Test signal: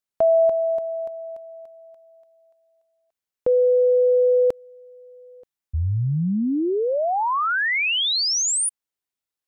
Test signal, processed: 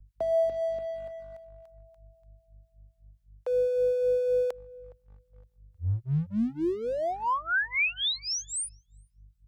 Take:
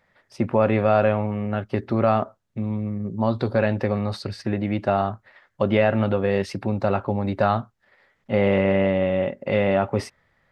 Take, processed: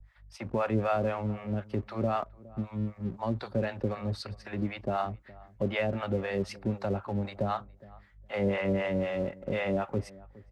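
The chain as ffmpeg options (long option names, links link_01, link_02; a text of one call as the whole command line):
ffmpeg -i in.wav -filter_complex "[0:a]highpass=frequency=80:width=0.5412,highpass=frequency=80:width=1.3066,acrossover=split=3000[link_01][link_02];[link_02]acompressor=threshold=-28dB:ratio=4:attack=1:release=60[link_03];[link_01][link_03]amix=inputs=2:normalize=0,asplit=2[link_04][link_05];[link_05]alimiter=limit=-15dB:level=0:latency=1:release=312,volume=-1.5dB[link_06];[link_04][link_06]amix=inputs=2:normalize=0,aeval=exprs='val(0)+0.00891*(sin(2*PI*50*n/s)+sin(2*PI*2*50*n/s)/2+sin(2*PI*3*50*n/s)/3+sin(2*PI*4*50*n/s)/4+sin(2*PI*5*50*n/s)/5)':channel_layout=same,acrossover=split=560[link_07][link_08];[link_07]aeval=exprs='val(0)*(1-1/2+1/2*cos(2*PI*3.9*n/s))':channel_layout=same[link_09];[link_08]aeval=exprs='val(0)*(1-1/2-1/2*cos(2*PI*3.9*n/s))':channel_layout=same[link_10];[link_09][link_10]amix=inputs=2:normalize=0,acrossover=split=120|660[link_11][link_12][link_13];[link_12]aeval=exprs='sgn(val(0))*max(abs(val(0))-0.00794,0)':channel_layout=same[link_14];[link_11][link_14][link_13]amix=inputs=3:normalize=0,asplit=2[link_15][link_16];[link_16]adelay=414,lowpass=frequency=1000:poles=1,volume=-20.5dB,asplit=2[link_17][link_18];[link_18]adelay=414,lowpass=frequency=1000:poles=1,volume=0.17[link_19];[link_15][link_17][link_19]amix=inputs=3:normalize=0,volume=-7dB" out.wav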